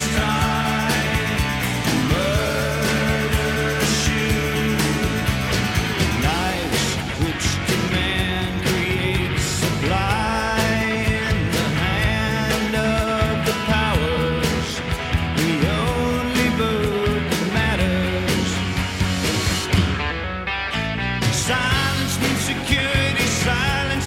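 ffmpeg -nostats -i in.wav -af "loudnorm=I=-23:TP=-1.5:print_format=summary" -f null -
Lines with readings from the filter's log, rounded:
Input Integrated:    -20.1 LUFS
Input True Peak:      -3.1 dBTP
Input LRA:             1.3 LU
Input Threshold:     -30.1 LUFS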